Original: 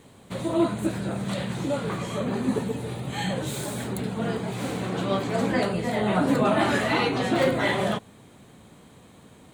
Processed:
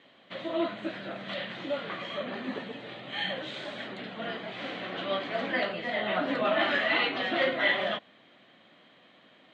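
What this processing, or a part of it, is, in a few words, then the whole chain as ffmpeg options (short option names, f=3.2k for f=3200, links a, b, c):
phone earpiece: -af "highpass=360,equalizer=f=430:t=q:w=4:g=-9,equalizer=f=620:t=q:w=4:g=3,equalizer=f=900:t=q:w=4:g=-7,equalizer=f=1.9k:t=q:w=4:g=6,equalizer=f=3.1k:t=q:w=4:g=7,lowpass=f=4.1k:w=0.5412,lowpass=f=4.1k:w=1.3066,volume=-3dB"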